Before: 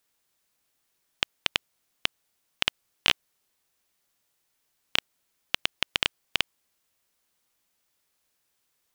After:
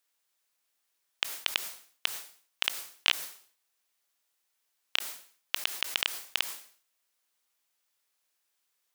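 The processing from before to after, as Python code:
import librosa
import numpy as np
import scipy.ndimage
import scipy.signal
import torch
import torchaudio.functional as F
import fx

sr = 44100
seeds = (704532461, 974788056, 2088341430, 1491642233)

y = fx.highpass(x, sr, hz=670.0, slope=6)
y = fx.sustainer(y, sr, db_per_s=120.0)
y = y * 10.0 ** (-3.0 / 20.0)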